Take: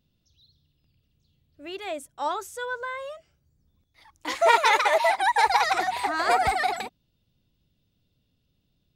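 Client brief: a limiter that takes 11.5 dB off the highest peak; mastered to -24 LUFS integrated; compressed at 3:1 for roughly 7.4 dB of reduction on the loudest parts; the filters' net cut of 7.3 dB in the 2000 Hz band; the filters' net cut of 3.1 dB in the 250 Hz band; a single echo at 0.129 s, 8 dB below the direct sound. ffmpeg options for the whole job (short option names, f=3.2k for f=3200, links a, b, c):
-af "equalizer=f=250:t=o:g=-4.5,equalizer=f=2k:t=o:g=-9,acompressor=threshold=-27dB:ratio=3,alimiter=level_in=3.5dB:limit=-24dB:level=0:latency=1,volume=-3.5dB,aecho=1:1:129:0.398,volume=12dB"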